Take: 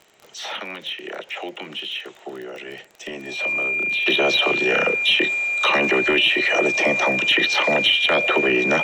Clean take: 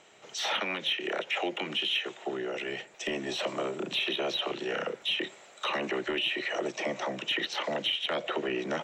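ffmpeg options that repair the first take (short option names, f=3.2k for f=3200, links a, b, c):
-af "adeclick=t=4,bandreject=f=2.4k:w=30,asetnsamples=n=441:p=0,asendcmd='4.06 volume volume -11.5dB',volume=0dB"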